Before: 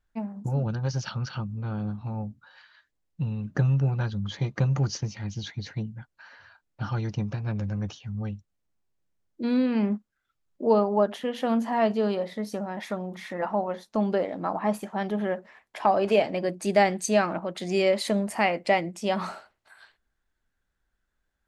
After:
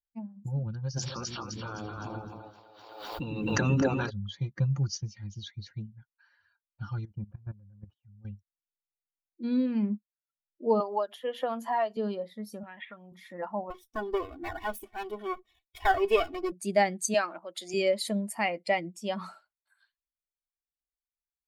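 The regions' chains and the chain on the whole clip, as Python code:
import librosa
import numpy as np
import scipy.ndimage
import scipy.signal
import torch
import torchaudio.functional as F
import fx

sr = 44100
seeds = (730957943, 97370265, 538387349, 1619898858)

y = fx.spec_clip(x, sr, under_db=23, at=(0.96, 4.09), fade=0.02)
y = fx.echo_split(y, sr, split_hz=380.0, low_ms=106, high_ms=257, feedback_pct=52, wet_db=-3, at=(0.96, 4.09), fade=0.02)
y = fx.pre_swell(y, sr, db_per_s=31.0, at=(0.96, 4.09), fade=0.02)
y = fx.chain(y, sr, fx.lowpass(hz=1600.0, slope=12),
    fx.level_steps(step_db=14), at=(7.05, 8.25))
y = fx.chain(y, sr, fx.highpass(hz=410.0, slope=12),
    fx.band_squash(depth_pct=100), at=(10.8, 11.97))
y = fx.chain(y, sr, fx.steep_lowpass(hz=3200.0, slope=48),
    fx.tilt_shelf(db=-8.0, hz=1300.0),
    fx.band_squash(depth_pct=100), at=(12.63, 13.12))
y = fx.chain(y, sr, fx.lower_of_two(delay_ms=0.33),
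    fx.comb(ms=2.7, depth=0.9), at=(13.7, 16.52))
y = fx.chain(y, sr, fx.highpass(hz=330.0, slope=12),
    fx.high_shelf(hz=2900.0, db=6.0), at=(17.14, 17.74))
y = fx.bin_expand(y, sr, power=1.5)
y = fx.high_shelf(y, sr, hz=7700.0, db=7.5)
y = y * librosa.db_to_amplitude(-2.0)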